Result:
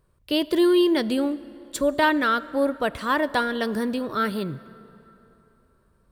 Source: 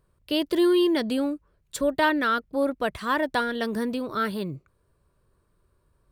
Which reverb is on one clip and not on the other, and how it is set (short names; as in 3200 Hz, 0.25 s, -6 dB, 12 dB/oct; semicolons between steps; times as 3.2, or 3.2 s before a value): plate-style reverb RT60 3.4 s, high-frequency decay 0.65×, DRR 17 dB; gain +2 dB